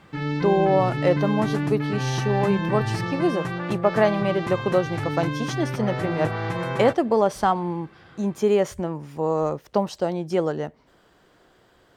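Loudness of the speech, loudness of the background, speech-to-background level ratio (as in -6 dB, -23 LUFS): -24.5 LUFS, -27.5 LUFS, 3.0 dB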